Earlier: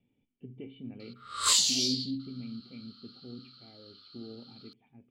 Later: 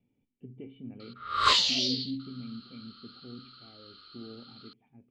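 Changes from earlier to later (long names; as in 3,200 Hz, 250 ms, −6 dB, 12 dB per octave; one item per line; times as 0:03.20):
background +11.0 dB
master: add high-frequency loss of the air 290 metres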